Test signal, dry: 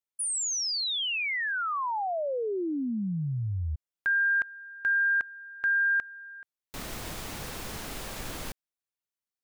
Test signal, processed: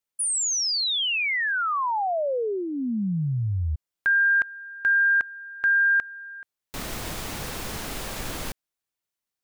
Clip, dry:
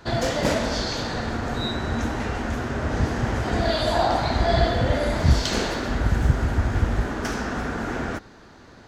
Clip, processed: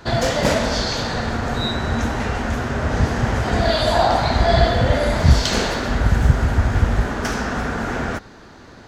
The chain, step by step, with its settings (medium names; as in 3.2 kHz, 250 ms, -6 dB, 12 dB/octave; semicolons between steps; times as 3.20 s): dynamic bell 320 Hz, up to -5 dB, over -42 dBFS, Q 3; trim +5 dB